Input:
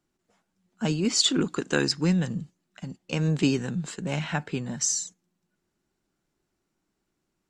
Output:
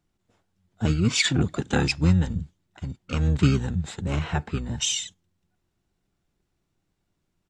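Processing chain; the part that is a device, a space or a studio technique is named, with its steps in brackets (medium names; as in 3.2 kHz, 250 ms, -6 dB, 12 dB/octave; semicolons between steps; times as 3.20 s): octave pedal (harmony voices -12 st 0 dB); bass shelf 120 Hz +6 dB; trim -2.5 dB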